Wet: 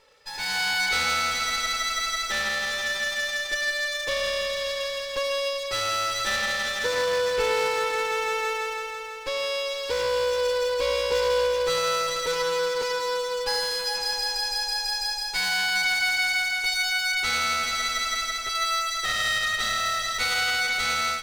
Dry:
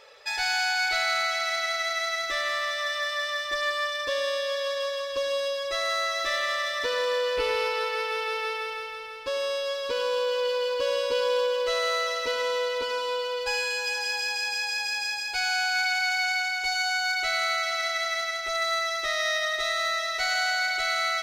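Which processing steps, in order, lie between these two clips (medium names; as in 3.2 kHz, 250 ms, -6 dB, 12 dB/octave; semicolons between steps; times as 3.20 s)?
comb filter that takes the minimum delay 2.2 ms; level rider gain up to 9.5 dB; trim -6.5 dB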